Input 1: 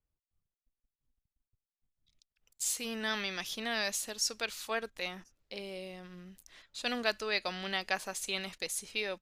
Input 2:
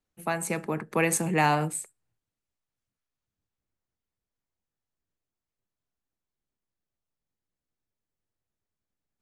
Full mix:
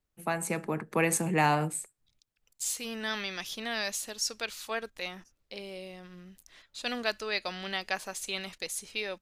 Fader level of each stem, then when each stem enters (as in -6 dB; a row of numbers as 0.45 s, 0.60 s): +0.5 dB, -2.0 dB; 0.00 s, 0.00 s